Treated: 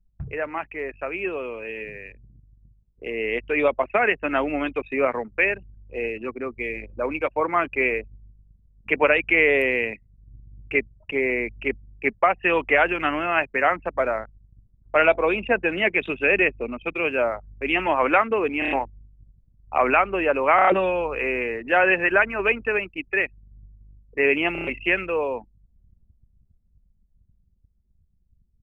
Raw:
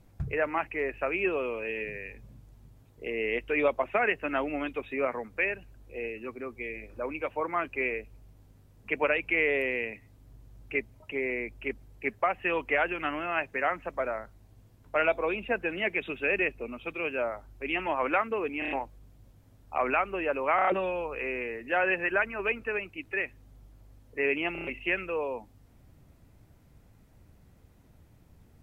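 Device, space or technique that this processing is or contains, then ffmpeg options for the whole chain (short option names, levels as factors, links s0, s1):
voice memo with heavy noise removal: -af "anlmdn=0.0631,dynaudnorm=f=550:g=13:m=2.66"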